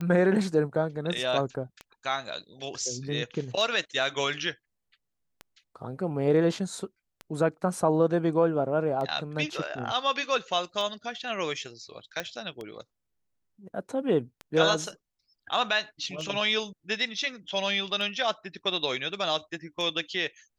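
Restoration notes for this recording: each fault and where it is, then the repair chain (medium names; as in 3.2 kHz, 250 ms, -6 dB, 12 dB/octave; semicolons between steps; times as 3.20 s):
tick 33 1/3 rpm -23 dBFS
12.20 s: pop -15 dBFS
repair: de-click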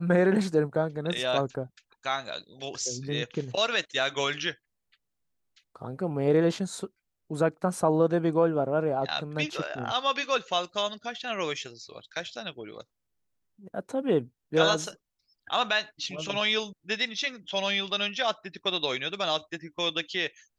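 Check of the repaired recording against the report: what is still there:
nothing left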